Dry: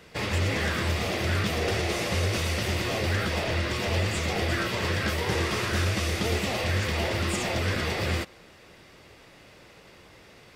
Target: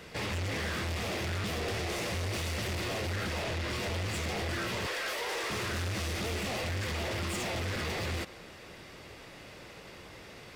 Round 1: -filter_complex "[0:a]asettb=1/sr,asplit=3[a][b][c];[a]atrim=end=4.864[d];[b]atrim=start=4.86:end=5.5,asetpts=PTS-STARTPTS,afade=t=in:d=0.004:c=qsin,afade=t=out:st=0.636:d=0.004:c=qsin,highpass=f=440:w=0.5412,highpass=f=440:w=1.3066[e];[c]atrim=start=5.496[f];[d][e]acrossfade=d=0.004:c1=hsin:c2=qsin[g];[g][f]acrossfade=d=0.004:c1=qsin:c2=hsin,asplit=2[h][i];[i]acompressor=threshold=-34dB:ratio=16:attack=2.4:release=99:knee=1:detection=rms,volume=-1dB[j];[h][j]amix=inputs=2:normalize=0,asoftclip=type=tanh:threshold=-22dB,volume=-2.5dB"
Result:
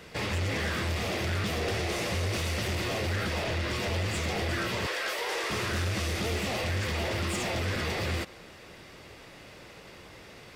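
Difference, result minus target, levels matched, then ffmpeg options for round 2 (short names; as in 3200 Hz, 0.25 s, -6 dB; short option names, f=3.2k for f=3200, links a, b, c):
soft clip: distortion -6 dB
-filter_complex "[0:a]asettb=1/sr,asplit=3[a][b][c];[a]atrim=end=4.864[d];[b]atrim=start=4.86:end=5.5,asetpts=PTS-STARTPTS,afade=t=in:d=0.004:c=qsin,afade=t=out:st=0.636:d=0.004:c=qsin,highpass=f=440:w=0.5412,highpass=f=440:w=1.3066[e];[c]atrim=start=5.496[f];[d][e]acrossfade=d=0.004:c1=hsin:c2=qsin[g];[g][f]acrossfade=d=0.004:c1=qsin:c2=hsin,asplit=2[h][i];[i]acompressor=threshold=-34dB:ratio=16:attack=2.4:release=99:knee=1:detection=rms,volume=-1dB[j];[h][j]amix=inputs=2:normalize=0,asoftclip=type=tanh:threshold=-28.5dB,volume=-2.5dB"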